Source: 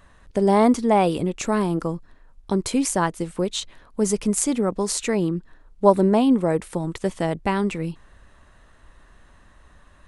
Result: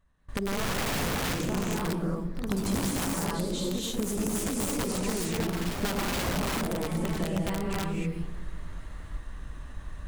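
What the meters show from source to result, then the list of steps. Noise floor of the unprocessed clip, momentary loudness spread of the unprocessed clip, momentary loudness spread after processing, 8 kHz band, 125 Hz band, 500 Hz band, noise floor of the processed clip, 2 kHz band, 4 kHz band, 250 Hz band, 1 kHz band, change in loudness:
-53 dBFS, 12 LU, 14 LU, -5.0 dB, -3.5 dB, -11.5 dB, -42 dBFS, -1.0 dB, -0.5 dB, -8.5 dB, -10.5 dB, -8.0 dB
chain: companding laws mixed up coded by mu; gated-style reverb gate 340 ms rising, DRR -4.5 dB; gate with hold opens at -33 dBFS; integer overflow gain 10 dB; compression 6:1, threshold -24 dBFS, peak gain reduction 10.5 dB; tone controls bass +8 dB, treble +1 dB; on a send: filtered feedback delay 117 ms, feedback 70%, low-pass 1.2 kHz, level -13 dB; on the sum: ever faster or slower copies 196 ms, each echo +2 st, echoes 3, each echo -6 dB; trim -7.5 dB

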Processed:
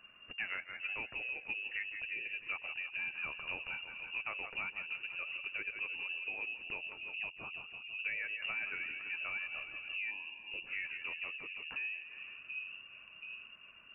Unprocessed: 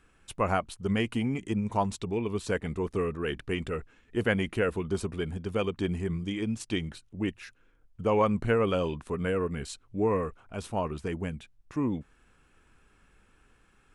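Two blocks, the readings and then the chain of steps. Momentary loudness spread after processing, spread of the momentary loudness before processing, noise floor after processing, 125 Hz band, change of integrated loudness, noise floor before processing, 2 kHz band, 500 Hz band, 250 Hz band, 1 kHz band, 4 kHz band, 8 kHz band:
7 LU, 11 LU, -56 dBFS, -33.0 dB, -8.5 dB, -64 dBFS, +1.5 dB, -28.0 dB, -32.0 dB, -18.0 dB, -3.5 dB, under -35 dB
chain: two-band feedback delay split 330 Hz, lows 725 ms, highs 165 ms, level -12.5 dB; compression 4:1, threshold -40 dBFS, peak gain reduction 17 dB; flange 1.8 Hz, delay 0.8 ms, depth 4.1 ms, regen +64%; time-frequency box 10.11–10.66 s, 420–1700 Hz -21 dB; frequency inversion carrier 2.8 kHz; trim +4.5 dB

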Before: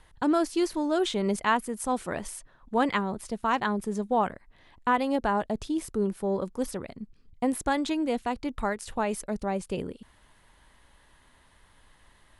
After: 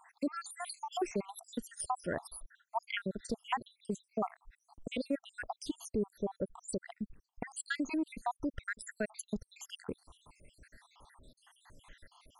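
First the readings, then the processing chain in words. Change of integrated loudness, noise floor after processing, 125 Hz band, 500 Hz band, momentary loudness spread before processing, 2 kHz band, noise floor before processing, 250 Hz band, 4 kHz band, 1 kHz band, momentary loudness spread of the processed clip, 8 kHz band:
-10.5 dB, -82 dBFS, -9.0 dB, -11.0 dB, 9 LU, -8.5 dB, -61 dBFS, -10.5 dB, -8.0 dB, -12.0 dB, 9 LU, -5.5 dB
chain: random holes in the spectrogram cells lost 77%; compression 2:1, threshold -43 dBFS, peak gain reduction 11 dB; trim +5 dB

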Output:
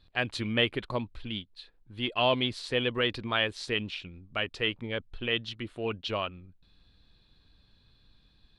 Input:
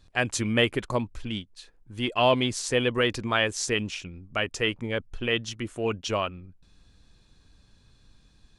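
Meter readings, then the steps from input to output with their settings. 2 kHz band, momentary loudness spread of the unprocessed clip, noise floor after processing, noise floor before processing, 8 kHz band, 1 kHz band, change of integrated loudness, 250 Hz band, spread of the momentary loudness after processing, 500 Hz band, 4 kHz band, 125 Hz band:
-3.5 dB, 12 LU, -64 dBFS, -60 dBFS, -18.0 dB, -4.5 dB, -3.5 dB, -5.0 dB, 11 LU, -5.0 dB, -1.0 dB, -5.0 dB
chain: resonant high shelf 5.1 kHz -8.5 dB, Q 3; trim -5 dB

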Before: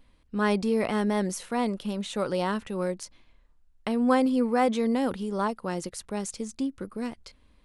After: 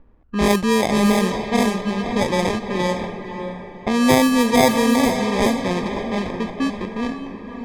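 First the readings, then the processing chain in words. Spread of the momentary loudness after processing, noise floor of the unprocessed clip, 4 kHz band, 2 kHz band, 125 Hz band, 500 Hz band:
14 LU, -61 dBFS, +13.5 dB, +11.0 dB, +10.0 dB, +8.0 dB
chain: sample-and-hold 31×; echo that smears into a reverb 546 ms, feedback 42%, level -7 dB; level-controlled noise filter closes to 1.6 kHz, open at -19 dBFS; trim +7.5 dB

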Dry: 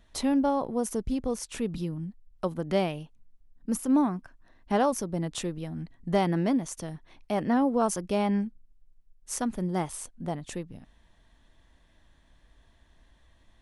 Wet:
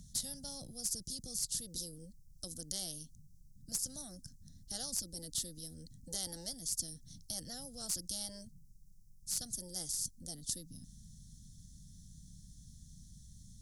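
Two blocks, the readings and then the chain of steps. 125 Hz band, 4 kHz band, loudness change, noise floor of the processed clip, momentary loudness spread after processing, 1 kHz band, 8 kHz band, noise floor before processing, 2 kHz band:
-16.5 dB, +1.0 dB, -10.5 dB, -59 dBFS, 20 LU, -28.0 dB, +2.5 dB, -62 dBFS, -21.5 dB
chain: elliptic band-stop 170–5600 Hz, stop band 40 dB; Chebyshev shaper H 7 -39 dB, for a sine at -18.5 dBFS; spectrum-flattening compressor 10:1; trim +2 dB

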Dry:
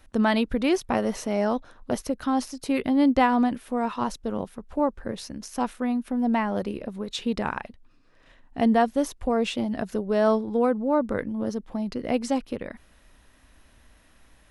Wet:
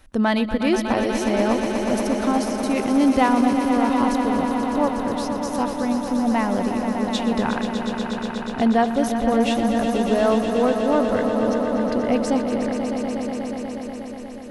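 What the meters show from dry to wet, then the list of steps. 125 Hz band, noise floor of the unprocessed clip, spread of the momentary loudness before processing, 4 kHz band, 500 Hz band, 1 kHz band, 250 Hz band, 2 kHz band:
+5.5 dB, -58 dBFS, 12 LU, +5.5 dB, +5.0 dB, +5.0 dB, +5.5 dB, +5.0 dB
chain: in parallel at -8 dB: saturation -20 dBFS, distortion -12 dB; on the sum: echo with a slow build-up 121 ms, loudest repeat 5, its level -9.5 dB

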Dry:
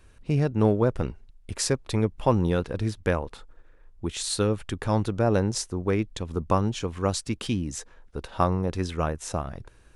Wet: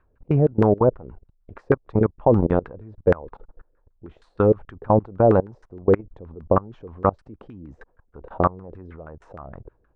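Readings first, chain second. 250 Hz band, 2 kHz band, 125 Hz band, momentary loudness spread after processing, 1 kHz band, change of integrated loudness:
+3.0 dB, -1.0 dB, +1.5 dB, 8 LU, +4.5 dB, +5.5 dB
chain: level held to a coarse grid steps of 23 dB; LFO low-pass saw down 6.4 Hz 400–1500 Hz; trim +5.5 dB

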